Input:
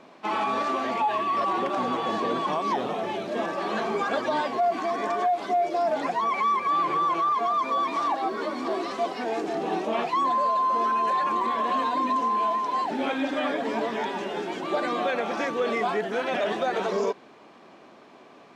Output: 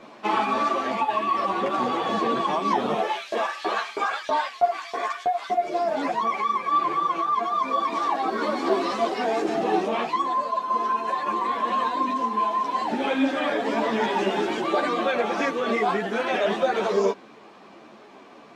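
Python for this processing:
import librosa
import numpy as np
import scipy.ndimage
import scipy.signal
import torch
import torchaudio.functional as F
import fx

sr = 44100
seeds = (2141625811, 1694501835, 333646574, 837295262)

y = fx.rider(x, sr, range_db=10, speed_s=0.5)
y = fx.filter_lfo_highpass(y, sr, shape='saw_up', hz=3.1, low_hz=350.0, high_hz=4000.0, q=1.0, at=(3.0, 5.5))
y = fx.ensemble(y, sr)
y = F.gain(torch.from_numpy(y), 5.0).numpy()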